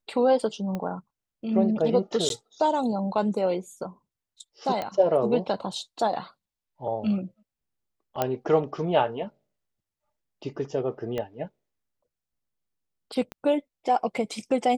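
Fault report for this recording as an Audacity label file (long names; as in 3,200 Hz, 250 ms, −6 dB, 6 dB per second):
0.750000	0.750000	click −19 dBFS
2.290000	2.300000	drop-out
4.820000	4.820000	click −17 dBFS
8.220000	8.220000	click −10 dBFS
11.180000	11.180000	click −18 dBFS
13.320000	13.320000	click −21 dBFS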